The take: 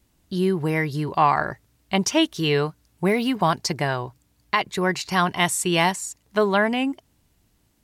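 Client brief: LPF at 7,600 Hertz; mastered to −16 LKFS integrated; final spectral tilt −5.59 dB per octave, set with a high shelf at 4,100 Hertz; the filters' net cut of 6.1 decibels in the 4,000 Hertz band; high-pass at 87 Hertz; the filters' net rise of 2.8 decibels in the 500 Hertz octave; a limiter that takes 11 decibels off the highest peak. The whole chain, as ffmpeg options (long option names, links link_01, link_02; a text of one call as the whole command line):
ffmpeg -i in.wav -af "highpass=87,lowpass=7600,equalizer=frequency=500:width_type=o:gain=4,equalizer=frequency=4000:width_type=o:gain=-6,highshelf=frequency=4100:gain=-5.5,volume=11.5dB,alimiter=limit=-5.5dB:level=0:latency=1" out.wav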